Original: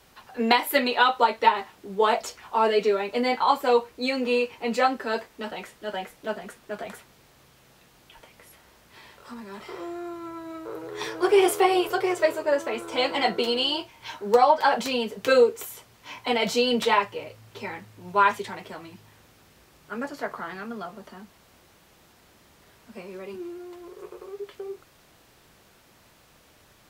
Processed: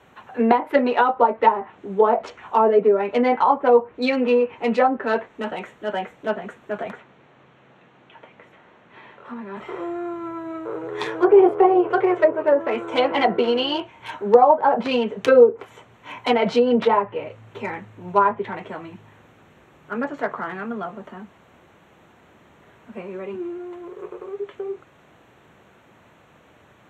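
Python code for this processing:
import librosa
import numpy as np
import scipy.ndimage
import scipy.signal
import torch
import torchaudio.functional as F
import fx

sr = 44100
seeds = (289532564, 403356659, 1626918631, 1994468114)

y = fx.bandpass_edges(x, sr, low_hz=120.0, high_hz=4200.0, at=(6.91, 9.57))
y = fx.wiener(y, sr, points=9)
y = scipy.signal.sosfilt(scipy.signal.butter(2, 91.0, 'highpass', fs=sr, output='sos'), y)
y = fx.env_lowpass_down(y, sr, base_hz=860.0, full_db=-18.0)
y = y * 10.0 ** (6.5 / 20.0)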